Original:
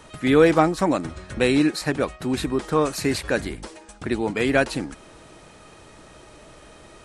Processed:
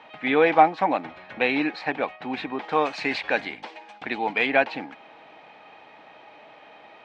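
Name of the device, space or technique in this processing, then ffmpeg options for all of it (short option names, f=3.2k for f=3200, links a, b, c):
phone earpiece: -filter_complex "[0:a]highpass=340,equalizer=f=370:t=q:w=4:g=-9,equalizer=f=550:t=q:w=4:g=-3,equalizer=f=800:t=q:w=4:g=9,equalizer=f=1.3k:t=q:w=4:g=-5,equalizer=f=2.3k:t=q:w=4:g=5,lowpass=f=3.4k:w=0.5412,lowpass=f=3.4k:w=1.3066,asettb=1/sr,asplit=3[a][b][c];[a]atrim=end=2.694[d];[b]atrim=start=2.69:end=4.47,asetpts=PTS-STARTPTS,afade=t=in:d=0.004:c=qsin,afade=t=out:st=1.776:d=0.004:c=qsin,highshelf=f=3.6k:g=10[e];[c]atrim=start=4.466[f];[d][e]acrossfade=d=0.004:c1=hsin:c2=qsin[g];[g][f]acrossfade=d=0.004:c1=qsin:c2=hsin"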